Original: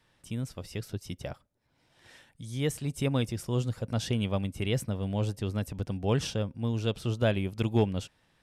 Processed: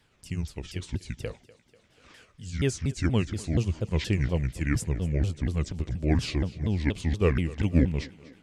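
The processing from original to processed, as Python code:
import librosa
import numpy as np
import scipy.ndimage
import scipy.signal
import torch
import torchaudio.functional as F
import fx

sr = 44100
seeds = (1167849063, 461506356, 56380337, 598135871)

p1 = fx.pitch_ramps(x, sr, semitones=-9.5, every_ms=238)
p2 = fx.peak_eq(p1, sr, hz=1000.0, db=-4.5, octaves=1.4)
p3 = p2 + fx.echo_thinned(p2, sr, ms=245, feedback_pct=63, hz=210.0, wet_db=-19.0, dry=0)
y = F.gain(torch.from_numpy(p3), 4.5).numpy()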